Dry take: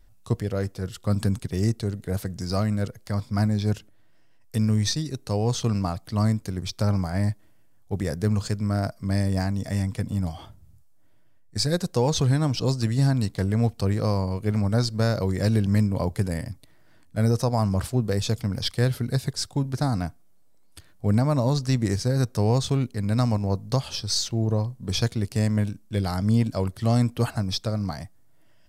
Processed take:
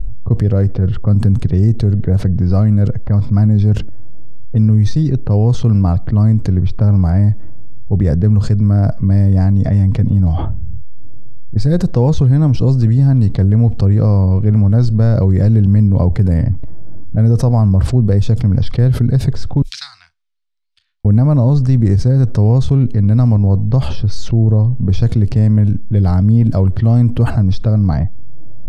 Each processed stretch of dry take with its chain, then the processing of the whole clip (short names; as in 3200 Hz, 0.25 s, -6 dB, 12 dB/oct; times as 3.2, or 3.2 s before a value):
19.62–21.05 inverse Chebyshev high-pass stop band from 590 Hz, stop band 80 dB + doubler 36 ms -13 dB
whole clip: low-pass opened by the level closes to 540 Hz, open at -21 dBFS; tilt -4 dB/oct; fast leveller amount 70%; gain -2.5 dB